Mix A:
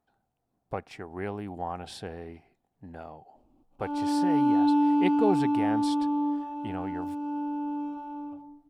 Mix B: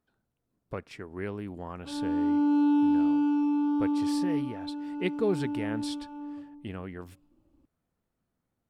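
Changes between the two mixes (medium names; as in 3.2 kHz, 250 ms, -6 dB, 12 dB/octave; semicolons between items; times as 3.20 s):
background: entry -1.95 s; master: add peaking EQ 770 Hz -15 dB 0.4 oct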